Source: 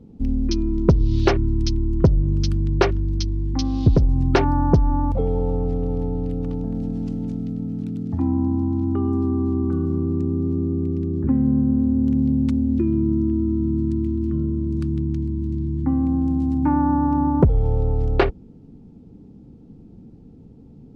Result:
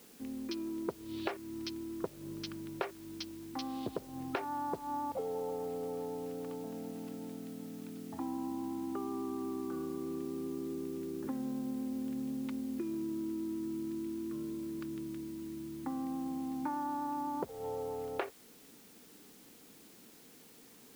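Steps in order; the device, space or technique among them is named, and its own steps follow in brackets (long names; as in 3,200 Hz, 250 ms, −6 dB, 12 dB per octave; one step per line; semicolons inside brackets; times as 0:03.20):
baby monitor (band-pass filter 490–3,200 Hz; downward compressor, threshold −30 dBFS, peak gain reduction 14 dB; white noise bed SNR 20 dB)
level −4 dB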